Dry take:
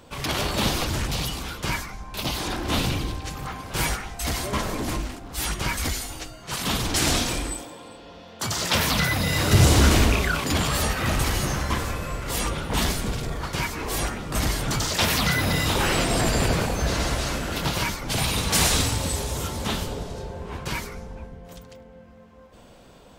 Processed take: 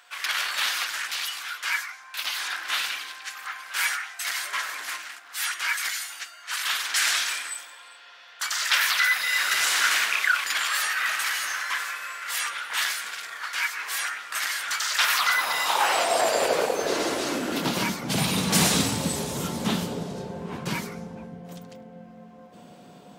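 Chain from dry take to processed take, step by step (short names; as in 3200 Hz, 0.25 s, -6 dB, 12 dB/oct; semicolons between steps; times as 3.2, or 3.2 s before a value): whine 720 Hz -53 dBFS; high-pass sweep 1600 Hz -> 180 Hz, 14.82–18.09; gain -1 dB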